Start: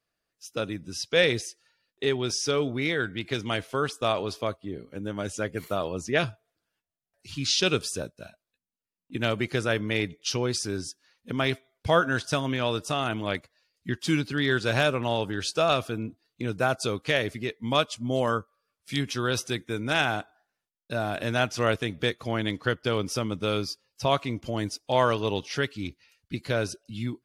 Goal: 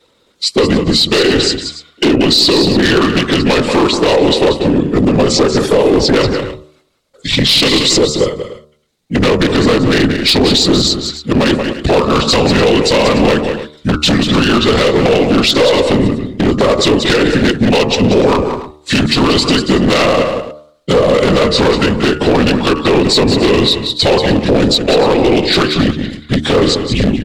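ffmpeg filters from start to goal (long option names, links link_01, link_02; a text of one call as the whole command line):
ffmpeg -i in.wav -af "afftfilt=real='hypot(re,im)*cos(2*PI*random(0))':imag='hypot(re,im)*sin(2*PI*random(1))':win_size=512:overlap=0.75,highshelf=frequency=4400:gain=-9,asetrate=35002,aresample=44100,atempo=1.25992,acompressor=threshold=-37dB:ratio=16,bandreject=frequency=75.29:width_type=h:width=4,bandreject=frequency=150.58:width_type=h:width=4,bandreject=frequency=225.87:width_type=h:width=4,bandreject=frequency=301.16:width_type=h:width=4,bandreject=frequency=376.45:width_type=h:width=4,bandreject=frequency=451.74:width_type=h:width=4,bandreject=frequency=527.03:width_type=h:width=4,bandreject=frequency=602.32:width_type=h:width=4,bandreject=frequency=677.61:width_type=h:width=4,bandreject=frequency=752.9:width_type=h:width=4,bandreject=frequency=828.19:width_type=h:width=4,bandreject=frequency=903.48:width_type=h:width=4,bandreject=frequency=978.77:width_type=h:width=4,bandreject=frequency=1054.06:width_type=h:width=4,bandreject=frequency=1129.35:width_type=h:width=4,bandreject=frequency=1204.64:width_type=h:width=4,bandreject=frequency=1279.93:width_type=h:width=4,bandreject=frequency=1355.22:width_type=h:width=4,bandreject=frequency=1430.51:width_type=h:width=4,aeval=exprs='clip(val(0),-1,0.00708)':channel_layout=same,aecho=1:1:183|289:0.316|0.133,aeval=exprs='0.0158*(abs(mod(val(0)/0.0158+3,4)-2)-1)':channel_layout=same,equalizer=frequency=250:width_type=o:width=1:gain=5,equalizer=frequency=500:width_type=o:width=1:gain=8,equalizer=frequency=4000:width_type=o:width=1:gain=11,equalizer=frequency=8000:width_type=o:width=1:gain=6,alimiter=level_in=31dB:limit=-1dB:release=50:level=0:latency=1,volume=-1dB" out.wav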